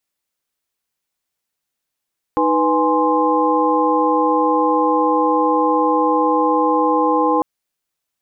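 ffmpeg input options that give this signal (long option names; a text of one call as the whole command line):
ffmpeg -f lavfi -i "aevalsrc='0.119*(sin(2*PI*311.13*t)+sin(2*PI*493.88*t)+sin(2*PI*830.61*t)+sin(2*PI*1046.5*t))':duration=5.05:sample_rate=44100" out.wav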